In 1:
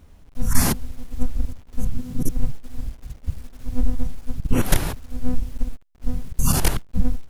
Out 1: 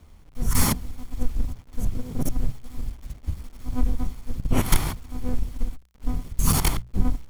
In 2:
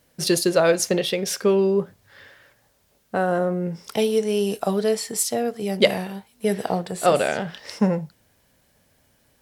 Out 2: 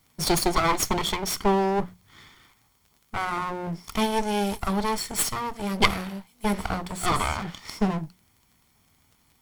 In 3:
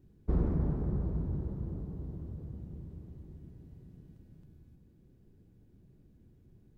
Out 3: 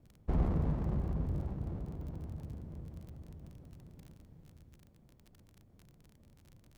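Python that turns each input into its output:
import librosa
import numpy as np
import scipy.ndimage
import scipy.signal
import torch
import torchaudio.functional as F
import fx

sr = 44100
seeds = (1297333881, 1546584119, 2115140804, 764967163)

y = fx.lower_of_two(x, sr, delay_ms=0.91)
y = fx.hum_notches(y, sr, base_hz=60, count=3)
y = fx.dmg_crackle(y, sr, seeds[0], per_s=31.0, level_db=-45.0)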